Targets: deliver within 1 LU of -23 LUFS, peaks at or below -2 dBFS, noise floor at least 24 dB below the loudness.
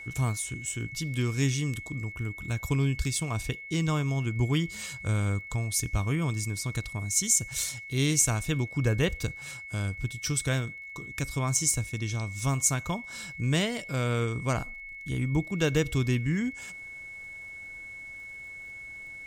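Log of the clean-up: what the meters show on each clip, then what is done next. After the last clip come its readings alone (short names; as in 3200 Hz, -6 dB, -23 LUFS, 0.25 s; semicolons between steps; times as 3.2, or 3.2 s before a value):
ticks 30/s; steady tone 2200 Hz; tone level -40 dBFS; loudness -29.0 LUFS; peak -10.0 dBFS; loudness target -23.0 LUFS
-> de-click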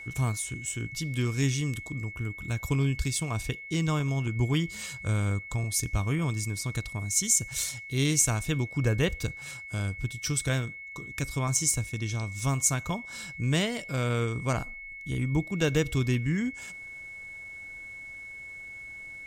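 ticks 0.10/s; steady tone 2200 Hz; tone level -40 dBFS
-> notch 2200 Hz, Q 30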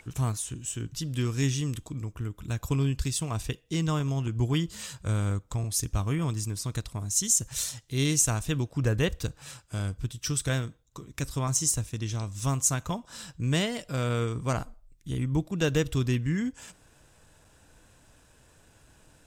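steady tone none; loudness -29.0 LUFS; peak -10.0 dBFS; loudness target -23.0 LUFS
-> gain +6 dB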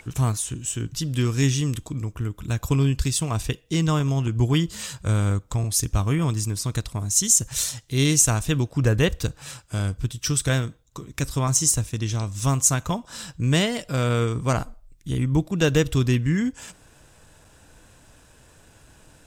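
loudness -23.0 LUFS; peak -4.0 dBFS; noise floor -54 dBFS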